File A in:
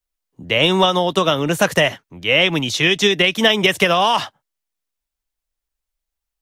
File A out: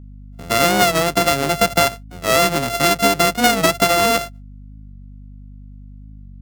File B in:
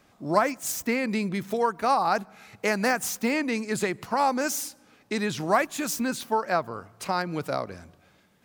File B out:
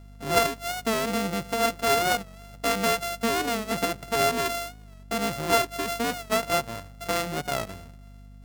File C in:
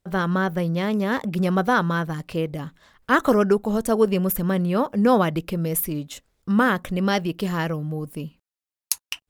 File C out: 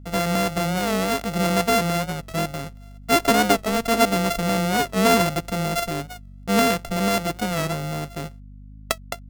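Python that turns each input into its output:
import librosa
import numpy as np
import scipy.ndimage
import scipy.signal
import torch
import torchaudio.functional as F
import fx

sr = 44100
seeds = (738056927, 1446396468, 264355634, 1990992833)

y = np.r_[np.sort(x[:len(x) // 64 * 64].reshape(-1, 64), axis=1).ravel(), x[len(x) // 64 * 64:]]
y = fx.add_hum(y, sr, base_hz=50, snr_db=19)
y = fx.record_warp(y, sr, rpm=45.0, depth_cents=100.0)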